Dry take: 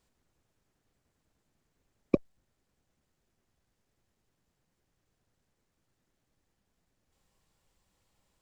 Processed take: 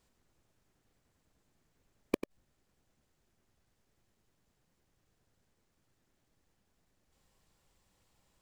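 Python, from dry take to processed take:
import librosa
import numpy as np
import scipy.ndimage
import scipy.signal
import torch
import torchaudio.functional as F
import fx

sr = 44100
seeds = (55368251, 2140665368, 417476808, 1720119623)

p1 = fx.quant_companded(x, sr, bits=2)
p2 = x + (p1 * 10.0 ** (-8.0 / 20.0))
p3 = fx.gate_flip(p2, sr, shuts_db=-20.0, range_db=-39)
p4 = p3 + 10.0 ** (-10.5 / 20.0) * np.pad(p3, (int(94 * sr / 1000.0), 0))[:len(p3)]
y = p4 * 10.0 ** (1.5 / 20.0)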